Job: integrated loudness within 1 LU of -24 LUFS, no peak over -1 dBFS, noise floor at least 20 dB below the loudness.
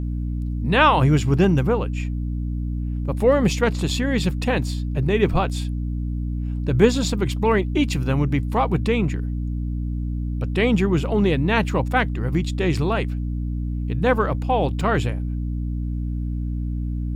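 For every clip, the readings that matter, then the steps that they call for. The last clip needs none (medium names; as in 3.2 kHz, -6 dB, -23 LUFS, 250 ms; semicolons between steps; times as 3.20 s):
dropouts 2; longest dropout 1.4 ms; hum 60 Hz; highest harmonic 300 Hz; hum level -23 dBFS; loudness -22.0 LUFS; peak level -2.0 dBFS; loudness target -24.0 LUFS
-> interpolate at 1.44/14.81 s, 1.4 ms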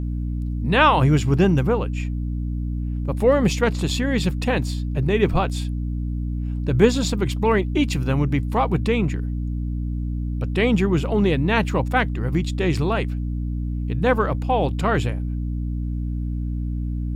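dropouts 0; hum 60 Hz; highest harmonic 300 Hz; hum level -23 dBFS
-> hum notches 60/120/180/240/300 Hz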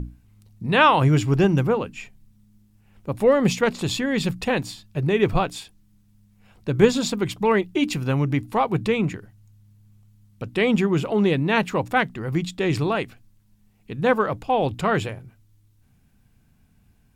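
hum not found; loudness -22.0 LUFS; peak level -2.5 dBFS; loudness target -24.0 LUFS
-> trim -2 dB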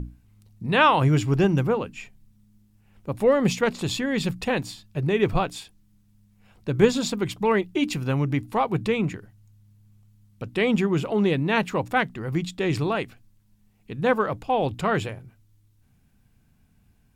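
loudness -24.0 LUFS; peak level -4.5 dBFS; noise floor -62 dBFS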